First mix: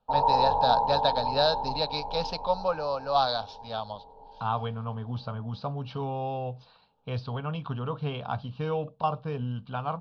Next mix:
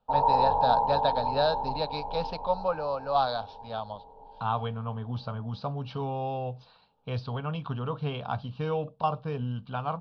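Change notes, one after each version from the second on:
first voice: add distance through air 220 m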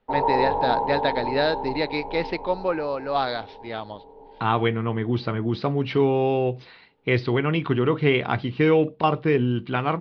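second voice +5.0 dB; master: remove static phaser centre 840 Hz, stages 4

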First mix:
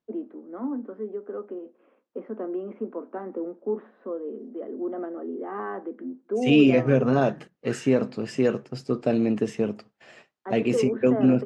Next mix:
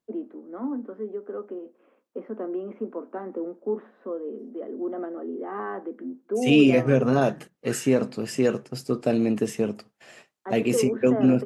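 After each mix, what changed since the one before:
master: remove distance through air 96 m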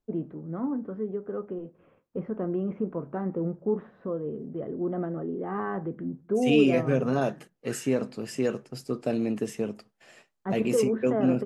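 first voice: remove steep high-pass 220 Hz 72 dB/octave; second voice -5.0 dB

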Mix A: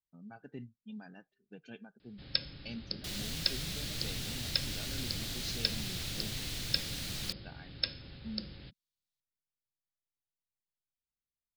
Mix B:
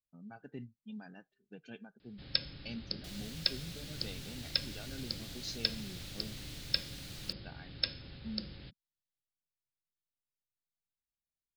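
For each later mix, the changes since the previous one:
second sound -9.0 dB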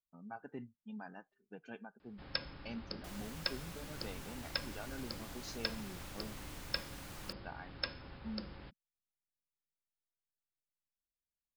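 master: add graphic EQ 125/1000/4000 Hz -6/+11/-10 dB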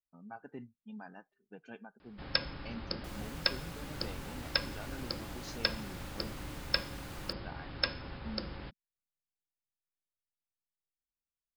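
first sound +7.0 dB

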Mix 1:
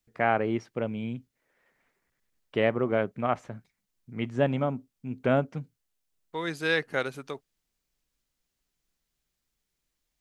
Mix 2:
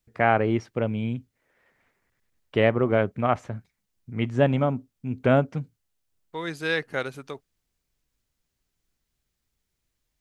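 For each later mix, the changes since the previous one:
first voice +4.0 dB; master: add peaking EQ 88 Hz +13 dB 0.49 oct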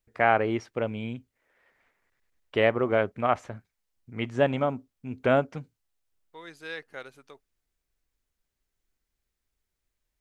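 second voice -11.0 dB; master: add peaking EQ 140 Hz -8.5 dB 2.1 oct

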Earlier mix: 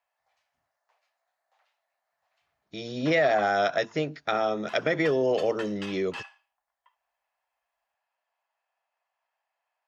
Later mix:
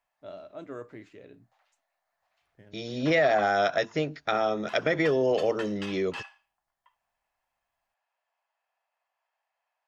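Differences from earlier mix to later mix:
first voice: unmuted; master: remove high-pass 79 Hz

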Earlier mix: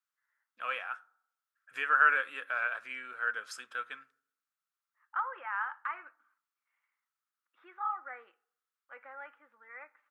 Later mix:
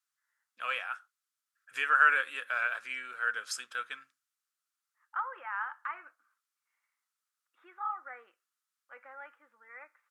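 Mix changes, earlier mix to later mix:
first voice: add peaking EQ 7.8 kHz +10.5 dB 2.7 oct; reverb: off

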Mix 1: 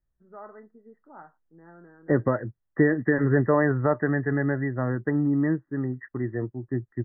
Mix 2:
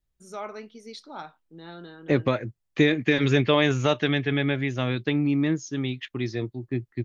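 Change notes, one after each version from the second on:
first voice +7.5 dB; master: remove brick-wall FIR low-pass 2 kHz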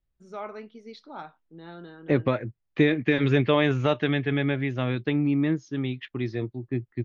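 master: add distance through air 210 m

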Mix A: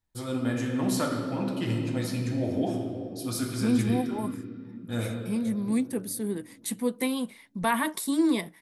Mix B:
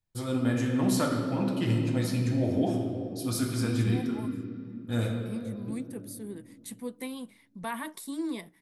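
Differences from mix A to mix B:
first voice: add bass shelf 170 Hz +4.5 dB; second voice -9.5 dB

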